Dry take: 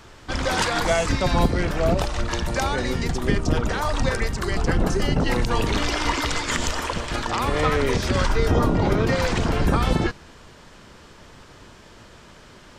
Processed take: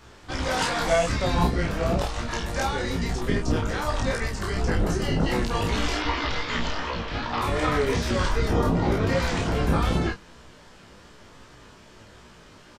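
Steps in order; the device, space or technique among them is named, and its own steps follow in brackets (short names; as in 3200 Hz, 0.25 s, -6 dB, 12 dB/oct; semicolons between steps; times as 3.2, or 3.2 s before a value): 5.97–7.41 LPF 4800 Hz 24 dB/oct; double-tracked vocal (doubler 30 ms -3 dB; chorus 2.6 Hz, delay 16 ms, depth 3.8 ms); gain -1.5 dB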